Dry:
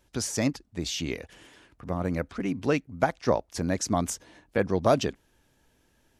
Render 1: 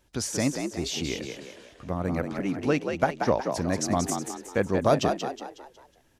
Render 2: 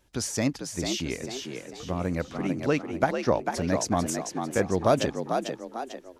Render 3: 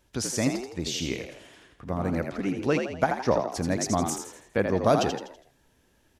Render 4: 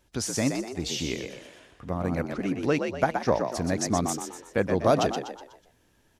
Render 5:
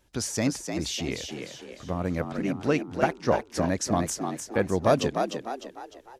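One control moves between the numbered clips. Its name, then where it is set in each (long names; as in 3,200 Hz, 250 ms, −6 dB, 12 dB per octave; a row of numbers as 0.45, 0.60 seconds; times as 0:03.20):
echo with shifted repeats, delay time: 183, 446, 82, 123, 302 milliseconds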